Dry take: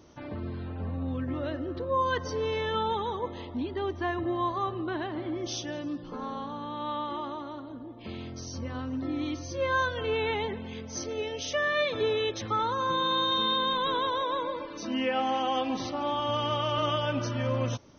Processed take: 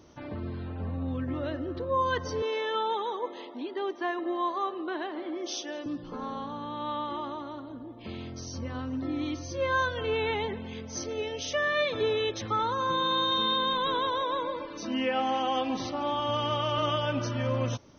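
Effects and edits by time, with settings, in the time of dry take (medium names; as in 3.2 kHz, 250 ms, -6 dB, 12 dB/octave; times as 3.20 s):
2.42–5.86 s: high-pass 300 Hz 24 dB/octave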